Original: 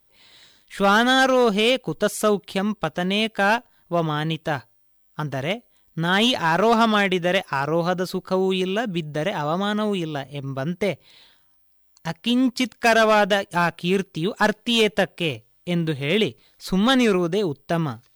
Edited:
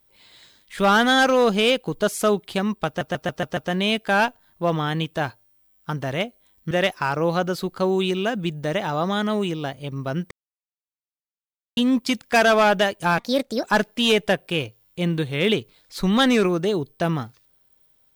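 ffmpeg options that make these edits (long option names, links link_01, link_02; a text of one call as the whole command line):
ffmpeg -i in.wav -filter_complex "[0:a]asplit=11[link_01][link_02][link_03][link_04][link_05][link_06][link_07][link_08][link_09][link_10][link_11];[link_01]atrim=end=3.012[link_12];[link_02]atrim=start=2.868:end=3.012[link_13];[link_03]atrim=start=2.868:end=3.012[link_14];[link_04]atrim=start=2.868:end=3.012[link_15];[link_05]atrim=start=2.868:end=3.012[link_16];[link_06]atrim=start=2.868:end=6.012[link_17];[link_07]atrim=start=7.218:end=10.82,asetpts=PTS-STARTPTS,afade=type=out:start_time=3.598:duration=0.004:curve=hsin[link_18];[link_08]atrim=start=10.82:end=12.28,asetpts=PTS-STARTPTS,volume=0[link_19];[link_09]atrim=start=12.28:end=13.694,asetpts=PTS-STARTPTS,afade=type=in:duration=0.004:curve=hsin[link_20];[link_10]atrim=start=13.69:end=14.33,asetpts=PTS-STARTPTS,asetrate=61740,aresample=44100[link_21];[link_11]atrim=start=14.326[link_22];[link_12][link_13]acrossfade=duration=0.004:curve1=hsin:curve2=hsin[link_23];[link_23][link_14]acrossfade=duration=0.004:curve1=hsin:curve2=hsin[link_24];[link_24][link_15]acrossfade=duration=0.004:curve1=hsin:curve2=hsin[link_25];[link_25][link_16]acrossfade=duration=0.004:curve1=hsin:curve2=hsin[link_26];[link_26][link_17]acrossfade=duration=0.004:curve1=hsin:curve2=hsin[link_27];[link_18][link_19][link_20]concat=n=3:v=0:a=1[link_28];[link_27][link_28]acrossfade=duration=0.004:curve1=hsin:curve2=hsin[link_29];[link_29][link_21]acrossfade=duration=0.004:curve1=hsin:curve2=hsin[link_30];[link_30][link_22]acrossfade=duration=0.004:curve1=hsin:curve2=hsin" out.wav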